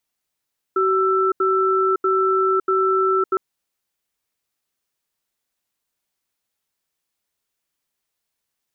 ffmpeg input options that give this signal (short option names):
-f lavfi -i "aevalsrc='0.126*(sin(2*PI*380*t)+sin(2*PI*1330*t))*clip(min(mod(t,0.64),0.56-mod(t,0.64))/0.005,0,1)':d=2.61:s=44100"